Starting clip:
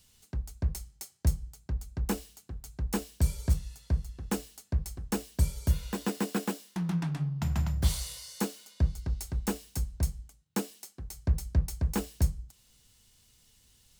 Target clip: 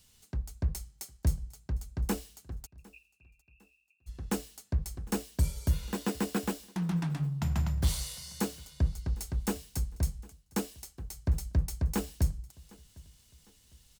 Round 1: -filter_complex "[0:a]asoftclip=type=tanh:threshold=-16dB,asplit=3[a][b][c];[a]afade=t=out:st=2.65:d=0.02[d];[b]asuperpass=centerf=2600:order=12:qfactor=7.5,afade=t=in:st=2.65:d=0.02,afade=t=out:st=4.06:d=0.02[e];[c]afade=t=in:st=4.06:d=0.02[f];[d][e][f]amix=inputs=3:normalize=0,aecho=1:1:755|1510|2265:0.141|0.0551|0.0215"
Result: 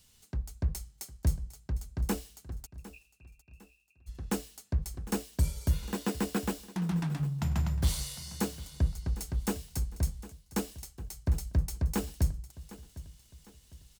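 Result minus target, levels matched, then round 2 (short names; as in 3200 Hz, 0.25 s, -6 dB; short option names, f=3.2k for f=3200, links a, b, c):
echo-to-direct +7 dB
-filter_complex "[0:a]asoftclip=type=tanh:threshold=-16dB,asplit=3[a][b][c];[a]afade=t=out:st=2.65:d=0.02[d];[b]asuperpass=centerf=2600:order=12:qfactor=7.5,afade=t=in:st=2.65:d=0.02,afade=t=out:st=4.06:d=0.02[e];[c]afade=t=in:st=4.06:d=0.02[f];[d][e][f]amix=inputs=3:normalize=0,aecho=1:1:755|1510:0.0631|0.0246"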